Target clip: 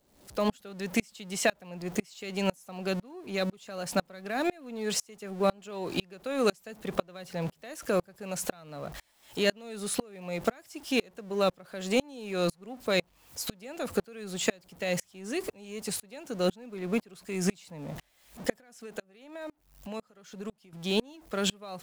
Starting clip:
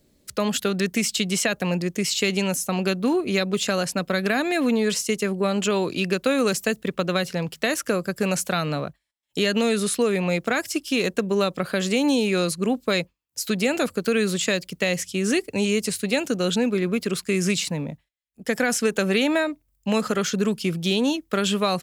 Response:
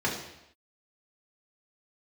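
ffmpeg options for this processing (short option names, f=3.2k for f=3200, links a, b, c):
-filter_complex "[0:a]aeval=exprs='val(0)+0.5*0.0251*sgn(val(0))':c=same,equalizer=f=730:t=o:w=1.1:g=6,asettb=1/sr,asplit=3[a][b][c];[a]atrim=end=18.584[d];[b]atrim=start=18.58:end=20.73,asetpts=PTS-STARTPTS,afade=t=in:d=0.004:c=qsin,afade=t=out:st=2.146:d=0.004:c=qsin,acompressor=threshold=-30dB:ratio=5[e];[c]atrim=start=20.726[f];[d][e]acrossfade=d=0.004:c1=hsin:c2=qsin[g];[g][f]acrossfade=d=0.004:c1=qsin:c2=hsin,aeval=exprs='val(0)*pow(10,-33*if(lt(mod(-2*n/s,1),2*abs(-2)/1000),1-mod(-2*n/s,1)/(2*abs(-2)/1000),(mod(-2*n/s,1)-2*abs(-2)/1000)/(1-2*abs(-2)/1000))/20)':c=same,volume=-3dB"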